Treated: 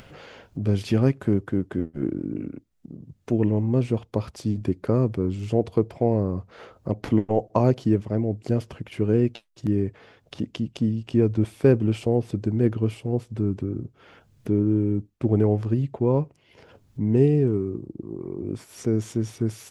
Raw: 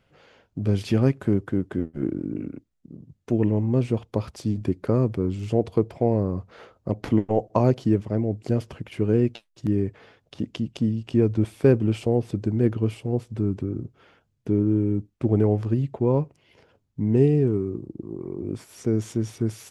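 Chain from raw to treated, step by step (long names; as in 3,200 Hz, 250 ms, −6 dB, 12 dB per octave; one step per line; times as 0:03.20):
upward compression, threshold −34 dBFS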